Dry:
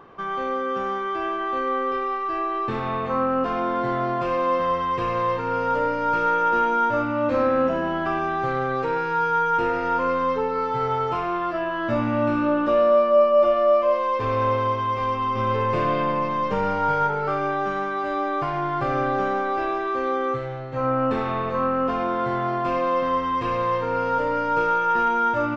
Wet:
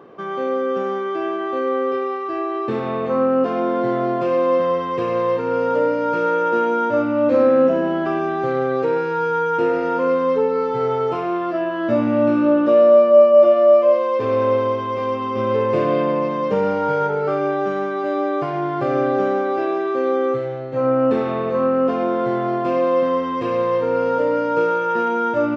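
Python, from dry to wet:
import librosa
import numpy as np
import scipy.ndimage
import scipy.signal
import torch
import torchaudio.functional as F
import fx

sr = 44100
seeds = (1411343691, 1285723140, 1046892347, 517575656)

y = scipy.signal.sosfilt(scipy.signal.butter(2, 170.0, 'highpass', fs=sr, output='sos'), x)
y = fx.low_shelf_res(y, sr, hz=710.0, db=6.0, q=1.5)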